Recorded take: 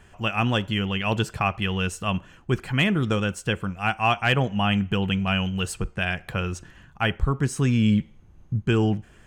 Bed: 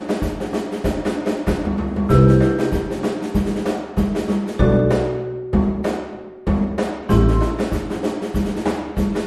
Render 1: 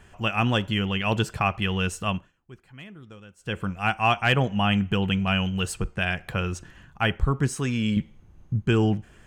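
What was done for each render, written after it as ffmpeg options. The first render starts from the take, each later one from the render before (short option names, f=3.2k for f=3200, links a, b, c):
-filter_complex "[0:a]asettb=1/sr,asplit=3[a][b][c];[a]atrim=end=7.554[d];[b]atrim=start=7.55:end=7.97,asetpts=PTS-STARTPTS,afade=t=in:d=0.004:c=qsin,afade=t=out:st=0.416:d=0.004:c=qsin,lowshelf=f=270:g=-8.5[e];[c]atrim=start=7.966[f];[d][e]acrossfade=d=0.004:c1=hsin:c2=qsin[g];[g][f]acrossfade=d=0.004:c1=qsin:c2=hsin,asplit=3[h][i][j];[h]atrim=end=2.32,asetpts=PTS-STARTPTS,afade=t=out:st=2.07:d=0.25:silence=0.0794328[k];[i]atrim=start=2.32:end=3.38,asetpts=PTS-STARTPTS,volume=-22dB[l];[j]atrim=start=3.38,asetpts=PTS-STARTPTS,afade=t=in:d=0.25:silence=0.0794328[m];[k][l][m]concat=n=3:v=0:a=1"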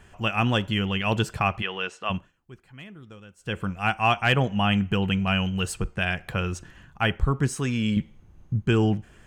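-filter_complex "[0:a]asplit=3[a][b][c];[a]afade=t=out:st=1.61:d=0.02[d];[b]highpass=430,lowpass=3.7k,afade=t=in:st=1.61:d=0.02,afade=t=out:st=2.09:d=0.02[e];[c]afade=t=in:st=2.09:d=0.02[f];[d][e][f]amix=inputs=3:normalize=0,asettb=1/sr,asplit=3[g][h][i];[g]atrim=end=4.864[j];[h]atrim=start=4.86:end=5.67,asetpts=PTS-STARTPTS,afade=t=in:d=0.004:c=qsin,afade=t=out:st=0.806:d=0.004:c=qsin,bandreject=f=3.4k:w=12[k];[i]atrim=start=5.666[l];[j][k]acrossfade=d=0.004:c1=hsin:c2=qsin[m];[m][l]acrossfade=d=0.004:c1=qsin:c2=hsin"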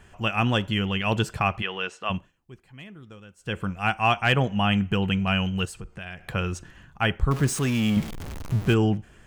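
-filter_complex "[0:a]asettb=1/sr,asplit=3[a][b][c];[a]atrim=end=2.154[d];[b]atrim=start=2.15:end=2.87,asetpts=PTS-STARTPTS,afade=t=in:d=0.004:c=qsin,afade=t=out:st=0.716:d=0.004:c=qsin,equalizer=f=1.4k:t=o:w=0.4:g=-5.5[e];[c]atrim=start=2.866[f];[d][e]acrossfade=d=0.004:c1=hsin:c2=qsin[g];[g][f]acrossfade=d=0.004:c1=qsin:c2=hsin,asettb=1/sr,asplit=3[h][i][j];[h]atrim=end=5.654[k];[i]atrim=start=5.65:end=6.25,asetpts=PTS-STARTPTS,afade=t=in:d=0.004:c=qsin,afade=t=out:st=0.596:d=0.004:c=qsin,acompressor=threshold=-39dB:ratio=2.5:attack=3.2:release=140:knee=1:detection=peak[l];[j]atrim=start=6.246[m];[k][l]acrossfade=d=0.004:c1=hsin:c2=qsin[n];[n][m]acrossfade=d=0.004:c1=qsin:c2=hsin,asettb=1/sr,asplit=3[o][p][q];[o]atrim=end=7.314[r];[p]atrim=start=7.31:end=8.74,asetpts=PTS-STARTPTS,afade=t=in:d=0.004:c=qsin,afade=t=out:st=1.426:d=0.004:c=qsin,aeval=exprs='val(0)+0.5*0.0335*sgn(val(0))':c=same[s];[q]atrim=start=8.736[t];[r][s]acrossfade=d=0.004:c1=hsin:c2=qsin[u];[u][t]acrossfade=d=0.004:c1=qsin:c2=hsin"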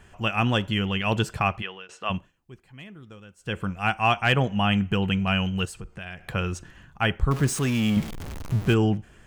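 -filter_complex "[0:a]asplit=2[a][b];[a]atrim=end=1.89,asetpts=PTS-STARTPTS,afade=t=out:st=1.49:d=0.4:silence=0.0668344[c];[b]atrim=start=1.89,asetpts=PTS-STARTPTS,afade=t=in:d=0.004:c=hsin:silence=0.0668344[d];[c][d]concat=n=2:v=0:a=1"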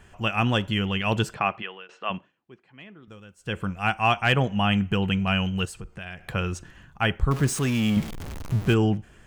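-filter_complex "[0:a]asettb=1/sr,asplit=3[a][b][c];[a]atrim=end=1.344[d];[b]atrim=start=1.34:end=3.08,asetpts=PTS-STARTPTS,afade=t=in:d=0.004:c=qsin,afade=t=out:st=1.736:d=0.004:c=qsin,highpass=210,lowpass=3.5k[e];[c]atrim=start=3.076[f];[d][e]acrossfade=d=0.004:c1=hsin:c2=qsin[g];[g][f]acrossfade=d=0.004:c1=qsin:c2=hsin"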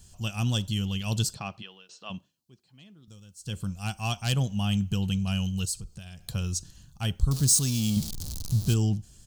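-af "firequalizer=gain_entry='entry(110,0);entry(390,-13);entry(570,-12);entry(2000,-19);entry(4200,10)':delay=0.05:min_phase=1"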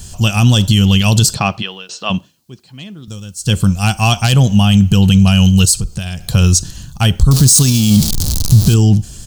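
-af "acontrast=33,alimiter=level_in=15.5dB:limit=-1dB:release=50:level=0:latency=1"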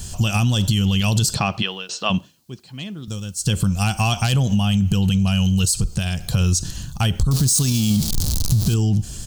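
-af "alimiter=limit=-6.5dB:level=0:latency=1:release=72,acompressor=threshold=-14dB:ratio=6"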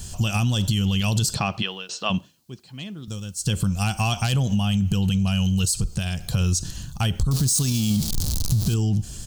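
-af "volume=-3.5dB"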